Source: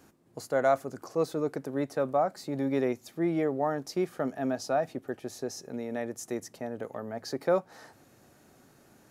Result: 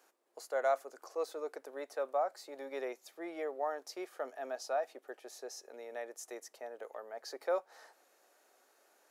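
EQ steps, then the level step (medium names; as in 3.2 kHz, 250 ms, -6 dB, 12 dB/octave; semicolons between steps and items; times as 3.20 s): high-pass 450 Hz 24 dB/octave; -6.0 dB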